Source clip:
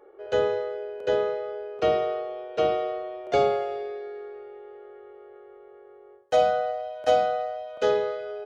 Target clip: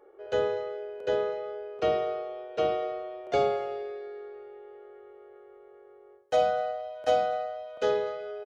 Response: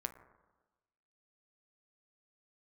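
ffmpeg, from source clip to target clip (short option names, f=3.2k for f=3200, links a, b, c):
-af "aecho=1:1:244:0.0794,volume=-3.5dB"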